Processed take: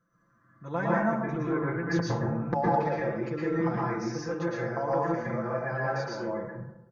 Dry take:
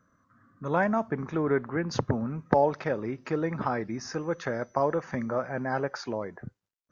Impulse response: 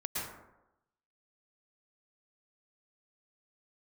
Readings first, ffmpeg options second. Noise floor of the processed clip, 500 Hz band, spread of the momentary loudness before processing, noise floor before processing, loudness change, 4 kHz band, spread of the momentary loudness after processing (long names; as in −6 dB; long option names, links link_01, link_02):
−67 dBFS, −1.5 dB, 8 LU, −75 dBFS, 0.0 dB, −2.0 dB, 7 LU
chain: -filter_complex "[0:a]aecho=1:1:5.9:0.96[link_01];[1:a]atrim=start_sample=2205[link_02];[link_01][link_02]afir=irnorm=-1:irlink=0,volume=-7dB"